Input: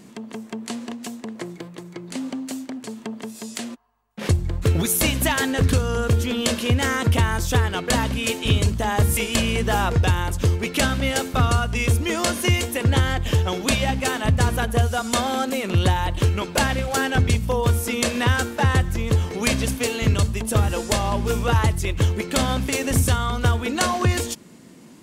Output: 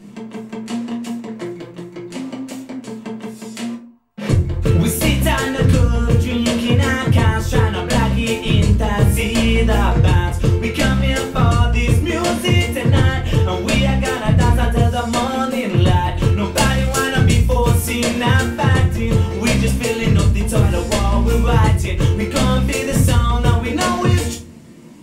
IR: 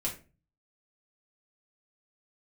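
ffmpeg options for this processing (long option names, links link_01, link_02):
-filter_complex "[0:a]asetnsamples=nb_out_samples=441:pad=0,asendcmd='16.45 highshelf g 2.5;18 highshelf g -3',highshelf=frequency=4200:gain=-6[link_01];[1:a]atrim=start_sample=2205,asetrate=41895,aresample=44100[link_02];[link_01][link_02]afir=irnorm=-1:irlink=0"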